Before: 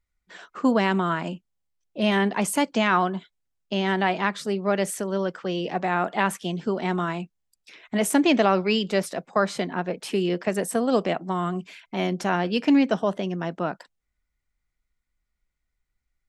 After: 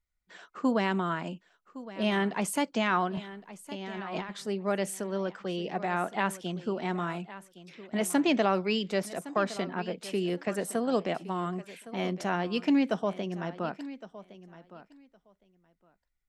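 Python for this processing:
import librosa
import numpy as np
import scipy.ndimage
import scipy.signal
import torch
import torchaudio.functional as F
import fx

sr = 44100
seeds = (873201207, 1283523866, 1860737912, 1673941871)

y = fx.over_compress(x, sr, threshold_db=-32.0, ratio=-1.0, at=(3.17, 4.31))
y = fx.echo_feedback(y, sr, ms=1113, feedback_pct=15, wet_db=-16.0)
y = F.gain(torch.from_numpy(y), -6.0).numpy()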